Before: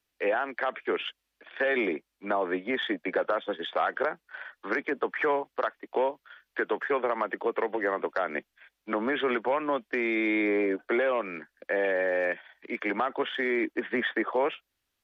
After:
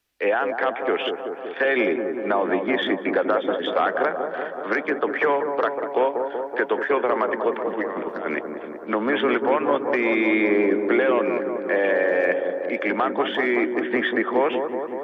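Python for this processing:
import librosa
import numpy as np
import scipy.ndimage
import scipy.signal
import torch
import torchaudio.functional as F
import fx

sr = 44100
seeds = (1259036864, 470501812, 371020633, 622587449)

p1 = fx.over_compress(x, sr, threshold_db=-33.0, ratio=-0.5, at=(7.53, 8.38))
p2 = p1 + fx.echo_wet_lowpass(p1, sr, ms=189, feedback_pct=73, hz=970.0, wet_db=-5, dry=0)
y = p2 * 10.0 ** (5.5 / 20.0)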